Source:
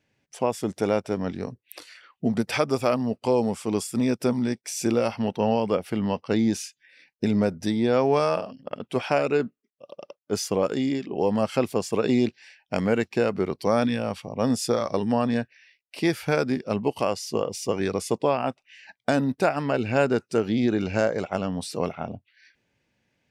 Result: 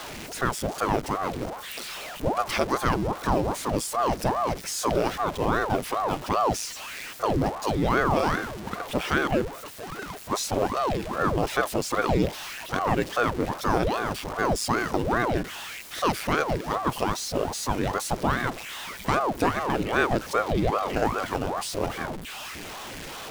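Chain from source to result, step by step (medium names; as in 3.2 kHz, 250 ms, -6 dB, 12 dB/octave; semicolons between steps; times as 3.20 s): jump at every zero crossing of -29 dBFS; ring modulator with a swept carrier 510 Hz, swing 90%, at 2.5 Hz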